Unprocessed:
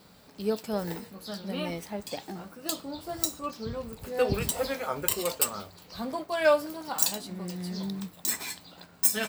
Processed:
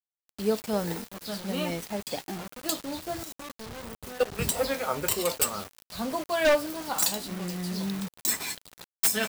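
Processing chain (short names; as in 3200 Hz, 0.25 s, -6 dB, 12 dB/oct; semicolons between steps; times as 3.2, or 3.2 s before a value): 3.23–4.39 level quantiser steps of 22 dB; wavefolder -17.5 dBFS; bit-crush 7-bit; gain +2.5 dB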